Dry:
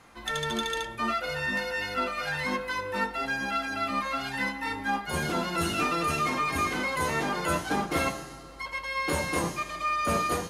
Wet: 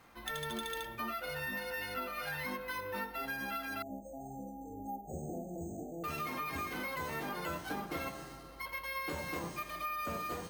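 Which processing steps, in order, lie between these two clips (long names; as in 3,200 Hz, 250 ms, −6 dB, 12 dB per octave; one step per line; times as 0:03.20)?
downward compressor, threshold −30 dBFS, peak gain reduction 8 dB
0:03.82–0:06.04: linear-phase brick-wall band-stop 850–6,100 Hz
bad sample-rate conversion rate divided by 3×, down filtered, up hold
level −5.5 dB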